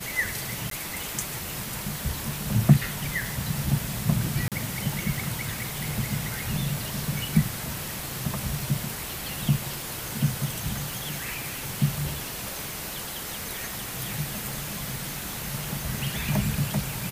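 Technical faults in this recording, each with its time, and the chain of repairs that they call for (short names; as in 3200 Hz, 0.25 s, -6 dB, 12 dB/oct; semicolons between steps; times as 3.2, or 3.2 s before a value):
crackle 31/s -33 dBFS
0.7–0.71 gap 13 ms
4.48–4.52 gap 37 ms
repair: de-click; interpolate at 0.7, 13 ms; interpolate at 4.48, 37 ms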